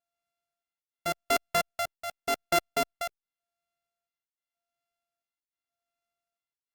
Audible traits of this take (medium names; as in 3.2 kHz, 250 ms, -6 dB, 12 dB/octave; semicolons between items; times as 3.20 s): a buzz of ramps at a fixed pitch in blocks of 64 samples; tremolo triangle 0.87 Hz, depth 85%; Opus